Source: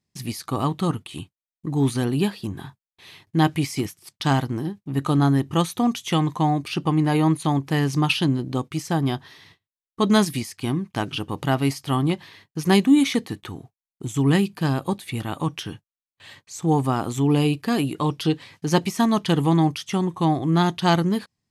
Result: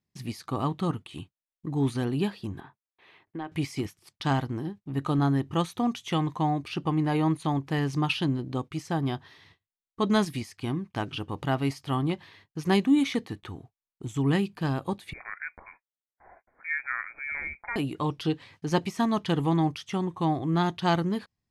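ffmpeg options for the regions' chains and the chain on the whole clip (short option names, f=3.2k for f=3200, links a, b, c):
-filter_complex "[0:a]asettb=1/sr,asplit=3[a][b][c];[a]atrim=end=2.604[d];[b]atrim=start=2.6:end=3.52,asetpts=PTS-STARTPTS,afade=t=in:d=0.004:c=qsin,afade=t=out:st=0.916:d=0.004:c=qsin,acrossover=split=250 2700:gain=0.178 1 0.141[e][f][g];[e][f][g]amix=inputs=3:normalize=0,acompressor=threshold=-26dB:ratio=6:attack=3.2:release=140:knee=1:detection=peak[h];[c]atrim=start=3.516[i];[d][h]acrossfade=d=0.004:c1=hsin:c2=qsin[j];[j][i]acrossfade=d=0.004:c1=qsin:c2=hsin,asettb=1/sr,asplit=3[k][l][m];[k]atrim=end=15.134[n];[l]atrim=start=15.13:end=17.76,asetpts=PTS-STARTPTS,afade=t=in:d=0.004:c=qsin,afade=t=out:st=2.626:d=0.004:c=qsin,highpass=530,lowpass=f=2.2k:t=q:w=0.5098,lowpass=f=2.2k:t=q:w=0.6013,lowpass=f=2.2k:t=q:w=0.9,lowpass=f=2.2k:t=q:w=2.563,afreqshift=-2600[o];[m]atrim=start=17.756[p];[n][o]acrossfade=d=0.004:c1=hsin:c2=qsin[q];[q][p]acrossfade=d=0.004:c1=qsin:c2=hsin,lowpass=f=3.7k:p=1,asubboost=boost=2.5:cutoff=79,volume=-4.5dB"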